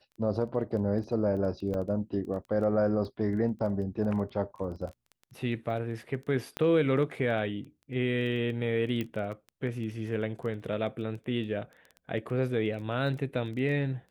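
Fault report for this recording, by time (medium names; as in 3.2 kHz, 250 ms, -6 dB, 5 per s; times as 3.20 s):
crackle 11 per s -38 dBFS
1.74 s: dropout 2.6 ms
6.57 s: pop -18 dBFS
9.01 s: pop -20 dBFS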